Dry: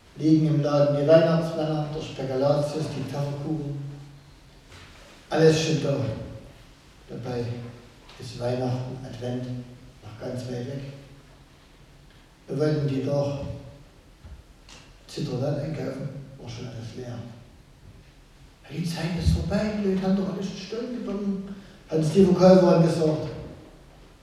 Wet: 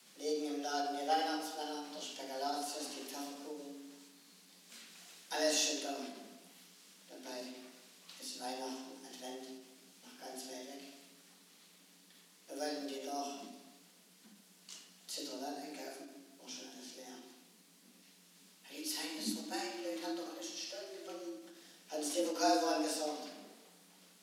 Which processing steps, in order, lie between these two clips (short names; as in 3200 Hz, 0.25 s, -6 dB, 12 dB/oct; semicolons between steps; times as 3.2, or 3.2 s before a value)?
frequency shift +140 Hz; pre-emphasis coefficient 0.9; ending taper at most 100 dB/s; gain +1.5 dB